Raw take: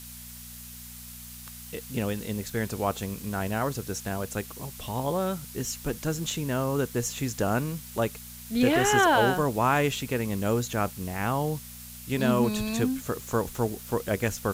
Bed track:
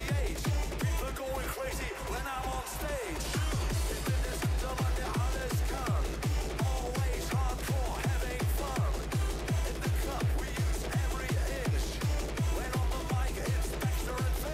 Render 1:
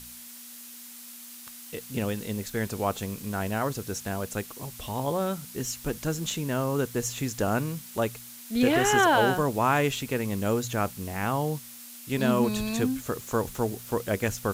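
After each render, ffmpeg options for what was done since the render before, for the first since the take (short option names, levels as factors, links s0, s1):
-af "bandreject=f=60:t=h:w=4,bandreject=f=120:t=h:w=4,bandreject=f=180:t=h:w=4"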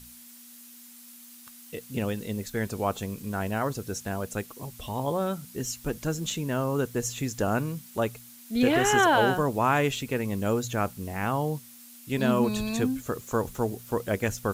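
-af "afftdn=nr=6:nf=-45"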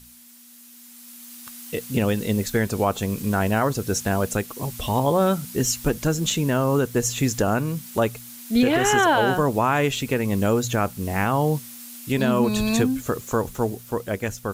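-af "dynaudnorm=f=120:g=21:m=3.35,alimiter=limit=0.316:level=0:latency=1:release=318"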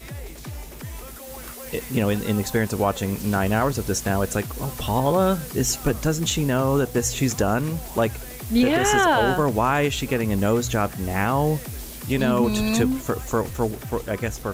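-filter_complex "[1:a]volume=0.596[s0];[0:a][s0]amix=inputs=2:normalize=0"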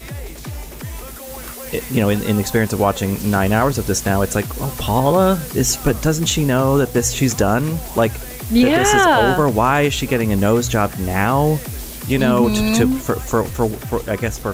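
-af "volume=1.88"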